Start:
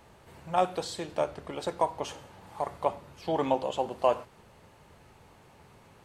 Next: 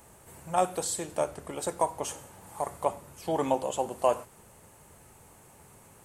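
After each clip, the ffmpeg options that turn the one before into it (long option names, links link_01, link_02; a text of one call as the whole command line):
ffmpeg -i in.wav -af "highshelf=frequency=6100:width_type=q:width=1.5:gain=12.5" out.wav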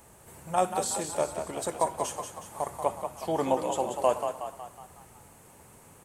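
ffmpeg -i in.wav -filter_complex "[0:a]asplit=7[link_01][link_02][link_03][link_04][link_05][link_06][link_07];[link_02]adelay=184,afreqshift=39,volume=-7dB[link_08];[link_03]adelay=368,afreqshift=78,volume=-13dB[link_09];[link_04]adelay=552,afreqshift=117,volume=-19dB[link_10];[link_05]adelay=736,afreqshift=156,volume=-25.1dB[link_11];[link_06]adelay=920,afreqshift=195,volume=-31.1dB[link_12];[link_07]adelay=1104,afreqshift=234,volume=-37.1dB[link_13];[link_01][link_08][link_09][link_10][link_11][link_12][link_13]amix=inputs=7:normalize=0" out.wav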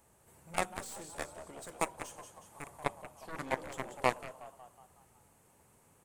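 ffmpeg -i in.wav -af "aeval=exprs='0.299*(cos(1*acos(clip(val(0)/0.299,-1,1)))-cos(1*PI/2))+0.0944*(cos(3*acos(clip(val(0)/0.299,-1,1)))-cos(3*PI/2))+0.0133*(cos(7*acos(clip(val(0)/0.299,-1,1)))-cos(7*PI/2))+0.00473*(cos(8*acos(clip(val(0)/0.299,-1,1)))-cos(8*PI/2))':channel_layout=same" out.wav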